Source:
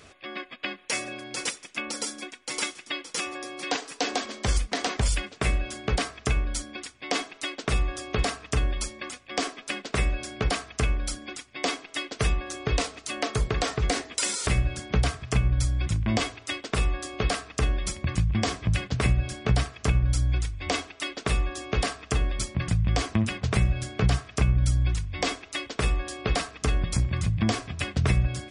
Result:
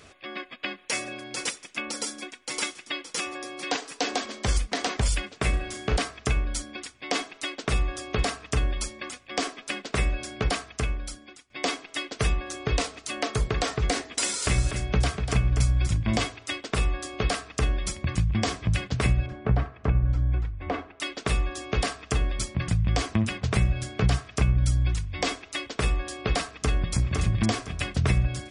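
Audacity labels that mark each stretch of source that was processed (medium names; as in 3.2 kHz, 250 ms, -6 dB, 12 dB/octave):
5.500000	5.970000	flutter echo walls apart 6 m, dies away in 0.32 s
10.520000	11.500000	fade out linear, to -15.5 dB
13.930000	16.250000	delay 244 ms -7.5 dB
19.260000	21.000000	low-pass 1.5 kHz
26.510000	26.940000	echo throw 510 ms, feedback 30%, level -4 dB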